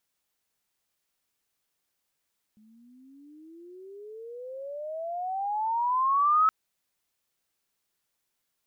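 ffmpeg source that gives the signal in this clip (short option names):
-f lavfi -i "aevalsrc='pow(10,(-17.5+37*(t/3.92-1))/20)*sin(2*PI*211*3.92/(31.5*log(2)/12)*(exp(31.5*log(2)/12*t/3.92)-1))':d=3.92:s=44100"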